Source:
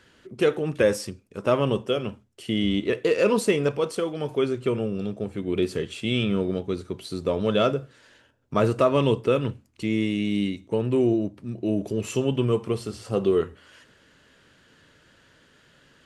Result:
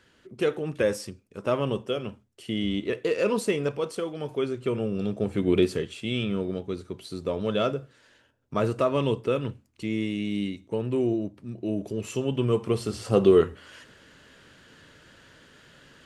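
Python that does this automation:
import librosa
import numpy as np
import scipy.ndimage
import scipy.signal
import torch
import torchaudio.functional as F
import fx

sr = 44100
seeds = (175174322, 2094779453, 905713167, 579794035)

y = fx.gain(x, sr, db=fx.line((4.58, -4.0), (5.47, 5.5), (5.95, -4.0), (12.22, -4.0), (13.02, 4.0)))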